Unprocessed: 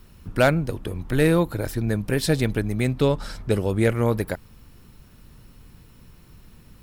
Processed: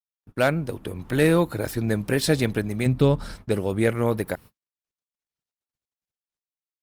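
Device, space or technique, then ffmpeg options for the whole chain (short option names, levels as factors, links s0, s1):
video call: -filter_complex "[0:a]asettb=1/sr,asplit=3[s0][s1][s2];[s0]atrim=end=2.864[s3];[s1]atrim=start=2.86:end=3.35,asetpts=PTS-STARTPTS,afade=t=in:d=0.004:c=qsin,afade=t=out:st=0.486:d=0.004:c=qsin,lowshelf=f=200:g=11.5[s4];[s2]atrim=start=3.346[s5];[s3][s4]acrossfade=d=0.004:c1=hsin:c2=qsin[s6];[s6][s5]acrossfade=d=0.004:c1=qsin:c2=hsin,highpass=f=130:p=1,dynaudnorm=f=120:g=7:m=2.82,agate=range=0.002:threshold=0.0158:ratio=16:detection=peak,volume=0.531" -ar 48000 -c:a libopus -b:a 32k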